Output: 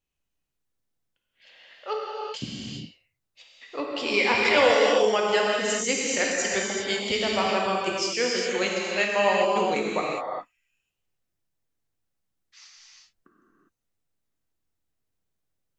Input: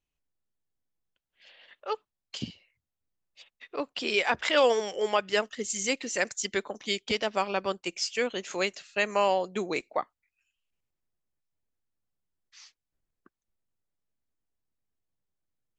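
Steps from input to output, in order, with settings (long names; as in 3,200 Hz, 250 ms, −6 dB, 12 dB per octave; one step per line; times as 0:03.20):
0:04.11–0:04.54: EQ curve with evenly spaced ripples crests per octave 0.89, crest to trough 8 dB
reverb whose tail is shaped and stops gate 430 ms flat, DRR −3.5 dB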